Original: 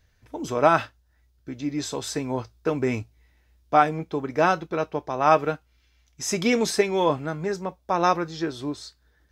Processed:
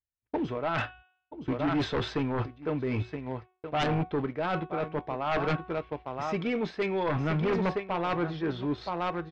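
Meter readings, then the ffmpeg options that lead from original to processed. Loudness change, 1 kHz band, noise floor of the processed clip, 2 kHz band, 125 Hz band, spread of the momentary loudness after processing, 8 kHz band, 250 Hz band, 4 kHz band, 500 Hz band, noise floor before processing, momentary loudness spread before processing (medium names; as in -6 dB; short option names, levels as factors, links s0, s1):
-6.5 dB, -8.5 dB, -80 dBFS, -5.0 dB, +1.5 dB, 7 LU, under -20 dB, -2.5 dB, -5.0 dB, -6.0 dB, -64 dBFS, 13 LU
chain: -filter_complex "[0:a]aecho=1:1:972:0.2,agate=range=0.00562:threshold=0.00447:ratio=16:detection=peak,asplit=2[s0][s1];[s1]acrusher=bits=5:mix=0:aa=0.000001,volume=0.251[s2];[s0][s2]amix=inputs=2:normalize=0,lowpass=f=3200:w=0.5412,lowpass=f=3200:w=1.3066,equalizer=f=140:w=1.6:g=3,bandreject=f=369:t=h:w=4,bandreject=f=738:t=h:w=4,bandreject=f=1107:t=h:w=4,bandreject=f=1476:t=h:w=4,bandreject=f=1845:t=h:w=4,bandreject=f=2214:t=h:w=4,bandreject=f=2583:t=h:w=4,bandreject=f=2952:t=h:w=4,bandreject=f=3321:t=h:w=4,bandreject=f=3690:t=h:w=4,areverse,acompressor=threshold=0.0447:ratio=10,areverse,tremolo=f=0.53:d=0.48,aeval=exprs='0.119*sin(PI/2*2.51*val(0)/0.119)':c=same,volume=0.596"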